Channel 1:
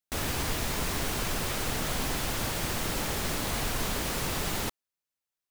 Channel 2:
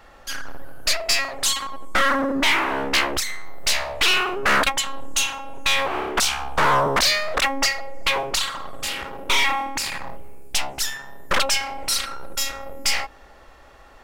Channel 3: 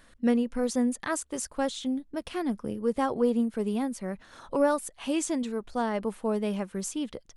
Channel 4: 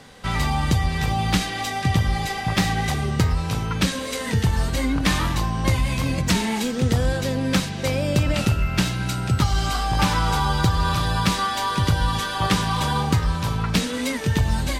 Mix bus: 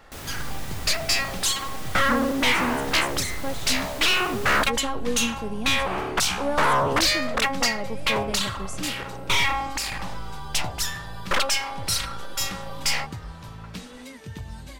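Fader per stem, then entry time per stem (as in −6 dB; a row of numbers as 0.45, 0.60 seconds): −6.5, −2.5, −3.5, −16.5 decibels; 0.00, 0.00, 1.85, 0.00 seconds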